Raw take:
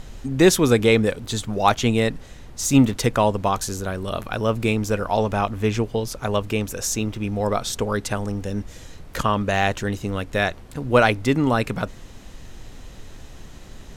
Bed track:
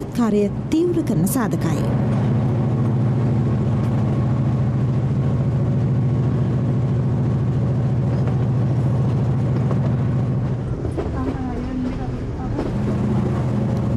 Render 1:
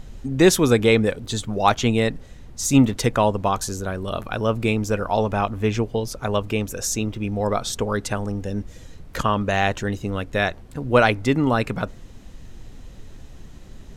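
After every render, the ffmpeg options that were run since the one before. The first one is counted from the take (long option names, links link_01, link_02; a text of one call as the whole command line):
ffmpeg -i in.wav -af "afftdn=noise_reduction=6:noise_floor=-42" out.wav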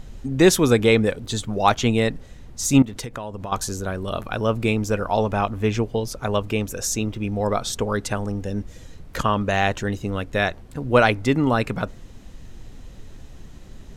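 ffmpeg -i in.wav -filter_complex "[0:a]asettb=1/sr,asplit=3[link_01][link_02][link_03];[link_01]atrim=end=2.824[link_04];[link_02]atrim=start=2.82:end=3.52,asetpts=PTS-STARTPTS,afade=type=in:duration=0.004:curve=qsin,afade=type=out:start_time=0.696:duration=0.004:curve=qsin,acompressor=threshold=-27dB:ratio=12:attack=3.2:release=140:knee=1:detection=peak[link_05];[link_03]atrim=start=3.516[link_06];[link_04][link_05]acrossfade=duration=0.004:curve1=hsin:curve2=qsin[link_07];[link_07][link_06]acrossfade=duration=0.004:curve1=qsin:curve2=hsin" out.wav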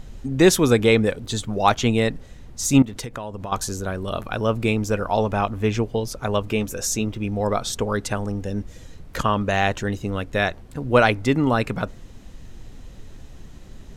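ffmpeg -i in.wav -filter_complex "[0:a]asettb=1/sr,asplit=3[link_01][link_02][link_03];[link_01]atrim=end=6.464[link_04];[link_02]atrim=start=6.46:end=7.05,asetpts=PTS-STARTPTS,afade=type=in:duration=0.004:curve=qsin,afade=type=out:start_time=0.586:duration=0.004:curve=qsin,asplit=2[link_05][link_06];[link_06]adelay=14,volume=-11dB[link_07];[link_05][link_07]amix=inputs=2:normalize=0,atrim=end_sample=26019[link_08];[link_03]atrim=start=7.046[link_09];[link_04][link_08]acrossfade=duration=0.004:curve1=hsin:curve2=qsin[link_10];[link_10][link_09]acrossfade=duration=0.004:curve1=qsin:curve2=hsin" out.wav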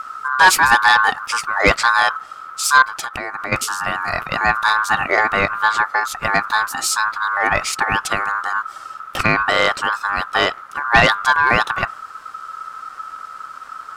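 ffmpeg -i in.wav -af "aeval=exprs='val(0)*sin(2*PI*1300*n/s)':channel_layout=same,aeval=exprs='0.708*sin(PI/2*1.58*val(0)/0.708)':channel_layout=same" out.wav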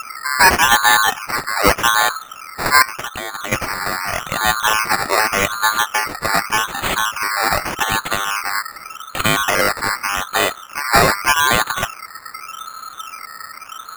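ffmpeg -i in.wav -af "acrusher=samples=11:mix=1:aa=0.000001:lfo=1:lforange=6.6:lforate=0.84" out.wav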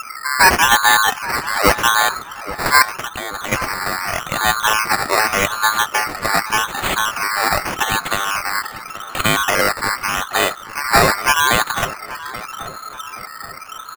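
ffmpeg -i in.wav -filter_complex "[0:a]asplit=2[link_01][link_02];[link_02]adelay=828,lowpass=frequency=2000:poles=1,volume=-14dB,asplit=2[link_03][link_04];[link_04]adelay=828,lowpass=frequency=2000:poles=1,volume=0.49,asplit=2[link_05][link_06];[link_06]adelay=828,lowpass=frequency=2000:poles=1,volume=0.49,asplit=2[link_07][link_08];[link_08]adelay=828,lowpass=frequency=2000:poles=1,volume=0.49,asplit=2[link_09][link_10];[link_10]adelay=828,lowpass=frequency=2000:poles=1,volume=0.49[link_11];[link_01][link_03][link_05][link_07][link_09][link_11]amix=inputs=6:normalize=0" out.wav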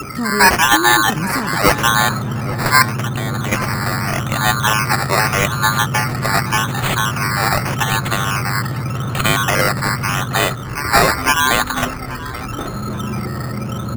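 ffmpeg -i in.wav -i bed.wav -filter_complex "[1:a]volume=-4dB[link_01];[0:a][link_01]amix=inputs=2:normalize=0" out.wav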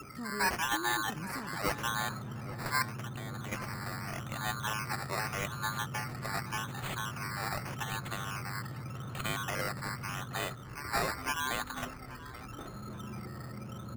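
ffmpeg -i in.wav -af "volume=-19.5dB" out.wav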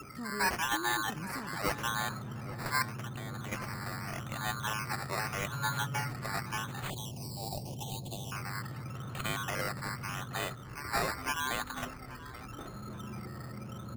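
ffmpeg -i in.wav -filter_complex "[0:a]asettb=1/sr,asplit=3[link_01][link_02][link_03];[link_01]atrim=end=5.524[link_04];[link_02]atrim=start=5.52:end=6.13,asetpts=PTS-STARTPTS,afade=type=in:duration=0.004:curve=qsin,afade=type=out:start_time=0.606:duration=0.004:curve=qsin,aecho=1:1:7.1:0.71,atrim=end_sample=26901[link_05];[link_03]atrim=start=6.126[link_06];[link_04][link_05]acrossfade=duration=0.004:curve1=hsin:curve2=qsin[link_07];[link_07][link_06]acrossfade=duration=0.004:curve1=qsin:curve2=hsin,asettb=1/sr,asplit=3[link_08][link_09][link_10];[link_08]atrim=end=6.904[link_11];[link_09]atrim=start=6.9:end=8.32,asetpts=PTS-STARTPTS,afade=type=in:duration=0.004:curve=qsin,afade=type=out:start_time=1.416:duration=0.004:curve=qsin,asuperstop=centerf=1600:order=8:qfactor=0.72[link_12];[link_10]atrim=start=8.316[link_13];[link_11][link_12]acrossfade=duration=0.004:curve1=hsin:curve2=qsin[link_14];[link_14][link_13]acrossfade=duration=0.004:curve1=qsin:curve2=hsin" out.wav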